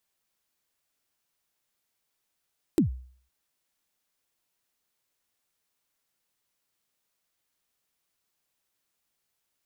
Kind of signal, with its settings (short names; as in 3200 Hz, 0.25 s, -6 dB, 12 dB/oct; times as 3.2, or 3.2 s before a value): kick drum length 0.51 s, from 370 Hz, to 63 Hz, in 0.117 s, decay 0.51 s, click on, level -15 dB